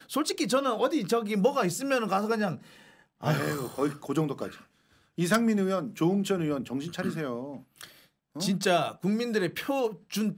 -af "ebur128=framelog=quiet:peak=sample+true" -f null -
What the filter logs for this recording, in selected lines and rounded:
Integrated loudness:
  I:         -28.5 LUFS
  Threshold: -39.3 LUFS
Loudness range:
  LRA:         2.6 LU
  Threshold: -49.7 LUFS
  LRA low:   -30.9 LUFS
  LRA high:  -28.3 LUFS
Sample peak:
  Peak:      -12.1 dBFS
True peak:
  Peak:      -12.1 dBFS